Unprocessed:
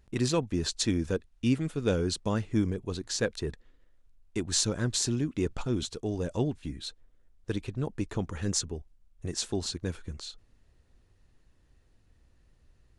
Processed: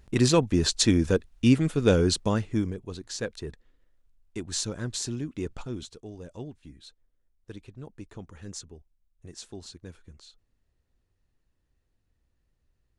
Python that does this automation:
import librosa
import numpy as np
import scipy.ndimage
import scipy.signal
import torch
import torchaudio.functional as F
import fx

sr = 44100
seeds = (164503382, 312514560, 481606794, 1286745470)

y = fx.gain(x, sr, db=fx.line((2.12, 6.5), (2.83, -3.5), (5.55, -3.5), (6.13, -10.5)))